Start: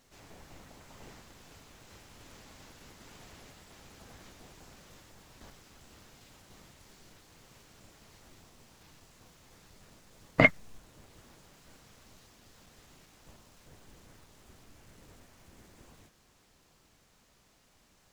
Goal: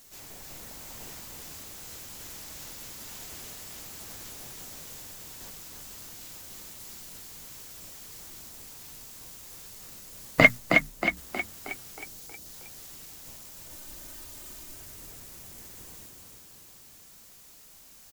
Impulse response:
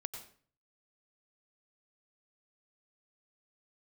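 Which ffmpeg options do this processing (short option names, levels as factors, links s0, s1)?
-filter_complex "[0:a]aemphasis=mode=production:type=75fm,bandreject=f=60:t=h:w=6,bandreject=f=120:t=h:w=6,bandreject=f=180:t=h:w=6,bandreject=f=240:t=h:w=6,asettb=1/sr,asplit=3[s0][s1][s2];[s0]atrim=end=10.494[s3];[s1]atrim=start=10.49:end=11.17,asetpts=PTS-STARTPTS,afade=t=in:d=0.004:c=qsin,afade=t=out:st=0.676:d=0.004:c=qsin,agate=range=0.501:threshold=0.00708:ratio=16:detection=peak[s4];[s2]atrim=start=11.166[s5];[s3][s4]acrossfade=d=0.004:c1=hsin:c2=qsin[s6];[s6][s5]acrossfade=d=0.004:c1=qsin:c2=hsin,asettb=1/sr,asplit=3[s7][s8][s9];[s7]atrim=end=11.954[s10];[s8]atrim=start=11.95:end=12.46,asetpts=PTS-STARTPTS,afade=t=in:d=0.004:c=qsin,afade=t=out:st=0.506:d=0.004:c=qsin,asuperstop=centerf=1700:order=4:qfactor=0.59[s11];[s9]atrim=start=12.456[s12];[s10][s11]acrossfade=d=0.004:c1=hsin:c2=qsin[s13];[s13][s12]acrossfade=d=0.004:c1=qsin:c2=hsin,asettb=1/sr,asplit=3[s14][s15][s16];[s14]atrim=end=13.694[s17];[s15]atrim=start=13.69:end=14.75,asetpts=PTS-STARTPTS,afade=t=in:d=0.004:c=qsin,afade=t=out:st=1.056:d=0.004:c=qsin,aecho=1:1:3.3:0.76,atrim=end_sample=46746[s18];[s16]atrim=start=14.746[s19];[s17][s18]acrossfade=d=0.004:c1=hsin:c2=qsin[s20];[s20][s19]acrossfade=d=0.004:c1=qsin:c2=hsin,asplit=2[s21][s22];[s22]asplit=7[s23][s24][s25][s26][s27][s28][s29];[s23]adelay=316,afreqshift=31,volume=0.596[s30];[s24]adelay=632,afreqshift=62,volume=0.309[s31];[s25]adelay=948,afreqshift=93,volume=0.16[s32];[s26]adelay=1264,afreqshift=124,volume=0.0841[s33];[s27]adelay=1580,afreqshift=155,volume=0.0437[s34];[s28]adelay=1896,afreqshift=186,volume=0.0226[s35];[s29]adelay=2212,afreqshift=217,volume=0.0117[s36];[s30][s31][s32][s33][s34][s35][s36]amix=inputs=7:normalize=0[s37];[s21][s37]amix=inputs=2:normalize=0,volume=1.41"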